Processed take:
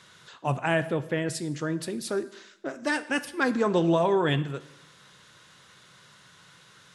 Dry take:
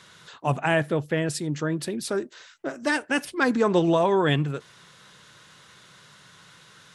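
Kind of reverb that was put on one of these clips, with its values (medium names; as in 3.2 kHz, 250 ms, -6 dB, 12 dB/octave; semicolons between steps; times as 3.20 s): plate-style reverb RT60 0.88 s, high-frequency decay 0.95×, pre-delay 0 ms, DRR 12.5 dB; trim -3 dB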